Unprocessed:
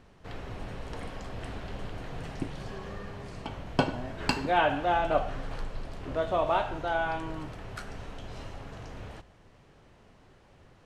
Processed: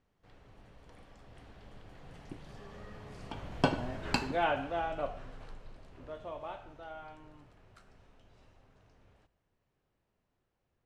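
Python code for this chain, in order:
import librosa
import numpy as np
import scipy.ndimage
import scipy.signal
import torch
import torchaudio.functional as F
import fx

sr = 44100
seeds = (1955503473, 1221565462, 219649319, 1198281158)

y = fx.doppler_pass(x, sr, speed_mps=15, closest_m=7.4, pass_at_s=3.82)
y = y * librosa.db_to_amplitude(-1.5)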